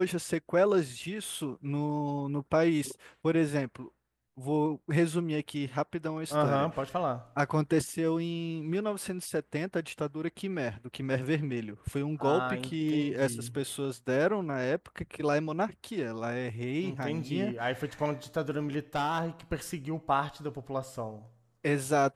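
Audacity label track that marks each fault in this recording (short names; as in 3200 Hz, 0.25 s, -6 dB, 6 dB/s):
18.950000	19.260000	clipped -25.5 dBFS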